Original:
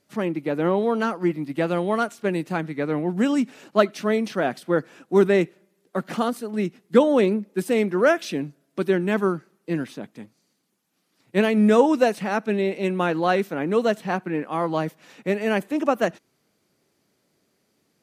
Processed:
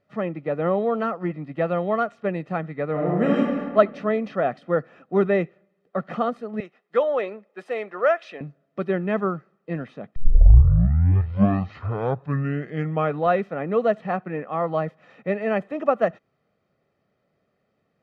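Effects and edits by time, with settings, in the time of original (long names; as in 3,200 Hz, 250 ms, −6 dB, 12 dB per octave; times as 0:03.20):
0:02.91–0:03.39: thrown reverb, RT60 1.8 s, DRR −4 dB
0:06.60–0:08.41: high-pass filter 600 Hz
0:10.16: tape start 3.24 s
whole clip: low-pass filter 2,000 Hz 12 dB per octave; comb filter 1.6 ms, depth 53%; level −1 dB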